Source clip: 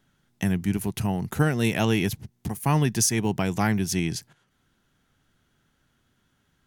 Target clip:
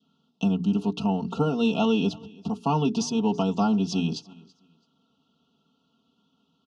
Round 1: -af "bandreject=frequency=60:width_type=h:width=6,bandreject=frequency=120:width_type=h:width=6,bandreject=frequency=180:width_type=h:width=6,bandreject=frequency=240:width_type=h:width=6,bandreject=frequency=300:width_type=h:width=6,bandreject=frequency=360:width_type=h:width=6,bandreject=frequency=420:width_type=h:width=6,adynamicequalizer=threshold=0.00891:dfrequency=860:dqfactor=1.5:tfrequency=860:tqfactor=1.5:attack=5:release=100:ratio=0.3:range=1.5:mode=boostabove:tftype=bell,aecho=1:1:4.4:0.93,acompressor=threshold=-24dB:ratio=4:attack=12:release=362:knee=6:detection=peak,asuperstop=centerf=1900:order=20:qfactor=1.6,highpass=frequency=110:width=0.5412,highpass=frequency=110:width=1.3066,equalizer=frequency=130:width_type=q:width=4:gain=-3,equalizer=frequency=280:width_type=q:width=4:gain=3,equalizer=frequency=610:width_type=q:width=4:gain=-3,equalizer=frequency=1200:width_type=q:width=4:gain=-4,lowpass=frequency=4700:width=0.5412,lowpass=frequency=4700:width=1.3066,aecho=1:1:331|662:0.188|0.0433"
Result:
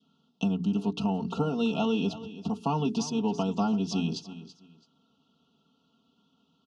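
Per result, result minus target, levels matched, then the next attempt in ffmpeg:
echo-to-direct +9 dB; downward compressor: peak gain reduction +5 dB
-af "bandreject=frequency=60:width_type=h:width=6,bandreject=frequency=120:width_type=h:width=6,bandreject=frequency=180:width_type=h:width=6,bandreject=frequency=240:width_type=h:width=6,bandreject=frequency=300:width_type=h:width=6,bandreject=frequency=360:width_type=h:width=6,bandreject=frequency=420:width_type=h:width=6,adynamicequalizer=threshold=0.00891:dfrequency=860:dqfactor=1.5:tfrequency=860:tqfactor=1.5:attack=5:release=100:ratio=0.3:range=1.5:mode=boostabove:tftype=bell,aecho=1:1:4.4:0.93,acompressor=threshold=-24dB:ratio=4:attack=12:release=362:knee=6:detection=peak,asuperstop=centerf=1900:order=20:qfactor=1.6,highpass=frequency=110:width=0.5412,highpass=frequency=110:width=1.3066,equalizer=frequency=130:width_type=q:width=4:gain=-3,equalizer=frequency=280:width_type=q:width=4:gain=3,equalizer=frequency=610:width_type=q:width=4:gain=-3,equalizer=frequency=1200:width_type=q:width=4:gain=-4,lowpass=frequency=4700:width=0.5412,lowpass=frequency=4700:width=1.3066,aecho=1:1:331|662:0.0668|0.0154"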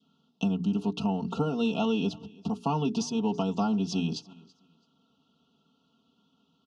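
downward compressor: peak gain reduction +5 dB
-af "bandreject=frequency=60:width_type=h:width=6,bandreject=frequency=120:width_type=h:width=6,bandreject=frequency=180:width_type=h:width=6,bandreject=frequency=240:width_type=h:width=6,bandreject=frequency=300:width_type=h:width=6,bandreject=frequency=360:width_type=h:width=6,bandreject=frequency=420:width_type=h:width=6,adynamicequalizer=threshold=0.00891:dfrequency=860:dqfactor=1.5:tfrequency=860:tqfactor=1.5:attack=5:release=100:ratio=0.3:range=1.5:mode=boostabove:tftype=bell,aecho=1:1:4.4:0.93,acompressor=threshold=-17dB:ratio=4:attack=12:release=362:knee=6:detection=peak,asuperstop=centerf=1900:order=20:qfactor=1.6,highpass=frequency=110:width=0.5412,highpass=frequency=110:width=1.3066,equalizer=frequency=130:width_type=q:width=4:gain=-3,equalizer=frequency=280:width_type=q:width=4:gain=3,equalizer=frequency=610:width_type=q:width=4:gain=-3,equalizer=frequency=1200:width_type=q:width=4:gain=-4,lowpass=frequency=4700:width=0.5412,lowpass=frequency=4700:width=1.3066,aecho=1:1:331|662:0.0668|0.0154"

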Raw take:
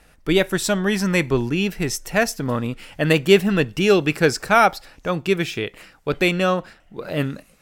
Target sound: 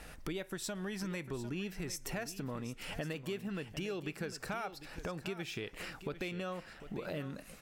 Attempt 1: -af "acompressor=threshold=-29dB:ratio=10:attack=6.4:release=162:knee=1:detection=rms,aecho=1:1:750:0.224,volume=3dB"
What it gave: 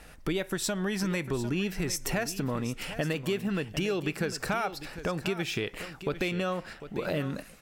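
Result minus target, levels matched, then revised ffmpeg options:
downward compressor: peak gain reduction −9.5 dB
-af "acompressor=threshold=-39.5dB:ratio=10:attack=6.4:release=162:knee=1:detection=rms,aecho=1:1:750:0.224,volume=3dB"

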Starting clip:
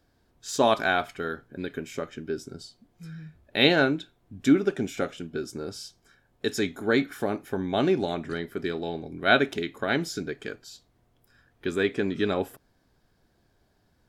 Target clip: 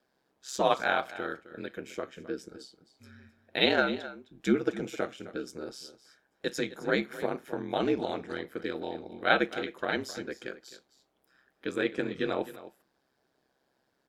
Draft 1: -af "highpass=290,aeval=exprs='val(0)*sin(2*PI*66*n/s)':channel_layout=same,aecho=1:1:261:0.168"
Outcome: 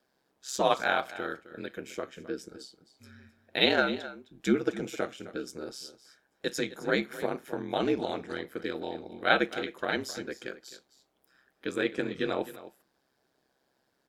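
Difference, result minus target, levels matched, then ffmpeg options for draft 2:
8,000 Hz band +2.5 dB
-af "highpass=290,highshelf=frequency=4900:gain=-4.5,aeval=exprs='val(0)*sin(2*PI*66*n/s)':channel_layout=same,aecho=1:1:261:0.168"

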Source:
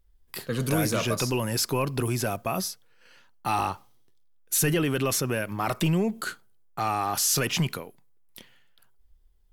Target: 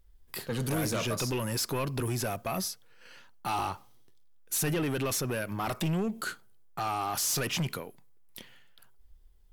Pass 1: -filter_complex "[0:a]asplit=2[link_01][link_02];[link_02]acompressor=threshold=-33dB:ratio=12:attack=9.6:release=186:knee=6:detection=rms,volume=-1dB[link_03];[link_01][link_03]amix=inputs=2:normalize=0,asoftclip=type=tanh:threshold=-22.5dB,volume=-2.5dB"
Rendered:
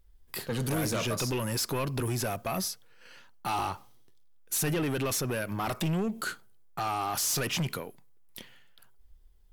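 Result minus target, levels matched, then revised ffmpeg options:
downward compressor: peak gain reduction −8 dB
-filter_complex "[0:a]asplit=2[link_01][link_02];[link_02]acompressor=threshold=-41.5dB:ratio=12:attack=9.6:release=186:knee=6:detection=rms,volume=-1dB[link_03];[link_01][link_03]amix=inputs=2:normalize=0,asoftclip=type=tanh:threshold=-22.5dB,volume=-2.5dB"

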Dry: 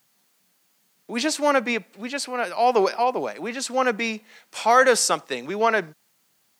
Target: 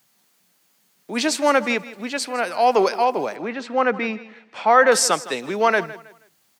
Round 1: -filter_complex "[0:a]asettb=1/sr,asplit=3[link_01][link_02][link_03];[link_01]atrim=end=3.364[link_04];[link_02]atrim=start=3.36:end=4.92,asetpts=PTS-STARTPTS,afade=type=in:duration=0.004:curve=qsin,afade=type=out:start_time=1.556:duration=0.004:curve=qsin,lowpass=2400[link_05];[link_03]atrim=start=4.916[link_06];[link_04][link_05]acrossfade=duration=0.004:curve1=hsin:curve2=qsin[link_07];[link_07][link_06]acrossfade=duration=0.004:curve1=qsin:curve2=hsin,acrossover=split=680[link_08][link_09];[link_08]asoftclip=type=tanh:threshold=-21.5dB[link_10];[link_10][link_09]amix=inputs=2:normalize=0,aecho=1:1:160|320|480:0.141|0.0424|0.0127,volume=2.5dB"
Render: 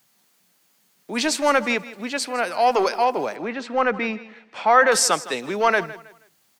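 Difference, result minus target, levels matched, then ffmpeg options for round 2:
soft clipping: distortion +16 dB
-filter_complex "[0:a]asettb=1/sr,asplit=3[link_01][link_02][link_03];[link_01]atrim=end=3.364[link_04];[link_02]atrim=start=3.36:end=4.92,asetpts=PTS-STARTPTS,afade=type=in:duration=0.004:curve=qsin,afade=type=out:start_time=1.556:duration=0.004:curve=qsin,lowpass=2400[link_05];[link_03]atrim=start=4.916[link_06];[link_04][link_05]acrossfade=duration=0.004:curve1=hsin:curve2=qsin[link_07];[link_07][link_06]acrossfade=duration=0.004:curve1=qsin:curve2=hsin,acrossover=split=680[link_08][link_09];[link_08]asoftclip=type=tanh:threshold=-10.5dB[link_10];[link_10][link_09]amix=inputs=2:normalize=0,aecho=1:1:160|320|480:0.141|0.0424|0.0127,volume=2.5dB"

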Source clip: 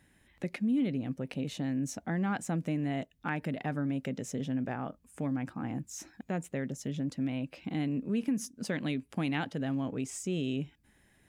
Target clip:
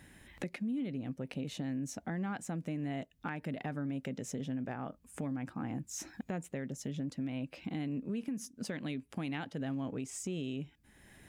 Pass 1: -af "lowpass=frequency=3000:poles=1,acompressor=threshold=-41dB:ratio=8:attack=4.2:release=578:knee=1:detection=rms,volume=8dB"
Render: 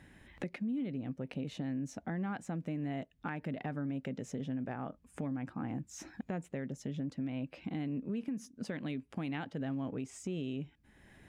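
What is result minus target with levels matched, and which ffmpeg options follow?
4,000 Hz band −3.5 dB
-af "acompressor=threshold=-41dB:ratio=8:attack=4.2:release=578:knee=1:detection=rms,volume=8dB"

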